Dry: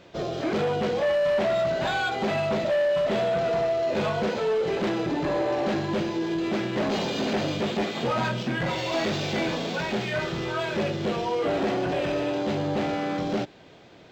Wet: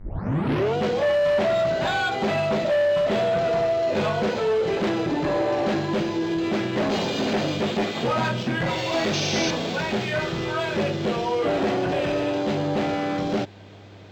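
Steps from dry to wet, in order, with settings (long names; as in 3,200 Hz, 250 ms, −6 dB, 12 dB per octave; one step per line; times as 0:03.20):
turntable start at the beginning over 0.77 s
hum with harmonics 100 Hz, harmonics 22, −50 dBFS −8 dB per octave
sound drawn into the spectrogram noise, 0:09.13–0:09.51, 2,200–6,500 Hz −32 dBFS
level +2.5 dB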